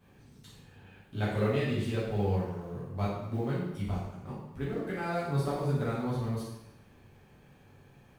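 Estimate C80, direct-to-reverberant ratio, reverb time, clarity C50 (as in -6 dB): 4.0 dB, -8.5 dB, 0.90 s, 0.5 dB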